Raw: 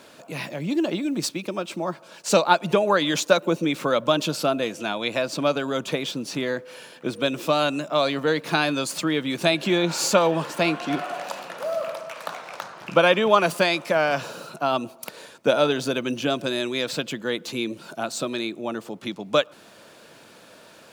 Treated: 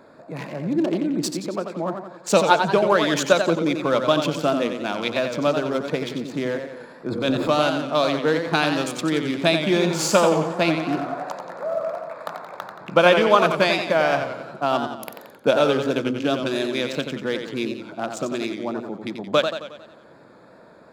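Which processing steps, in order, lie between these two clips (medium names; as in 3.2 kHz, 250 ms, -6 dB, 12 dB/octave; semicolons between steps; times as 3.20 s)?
local Wiener filter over 15 samples; on a send at -22 dB: reverberation, pre-delay 4 ms; 6.72–7.49 s: on the sum: transient shaper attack -4 dB, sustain +11 dB; modulated delay 90 ms, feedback 52%, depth 122 cents, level -7 dB; trim +1.5 dB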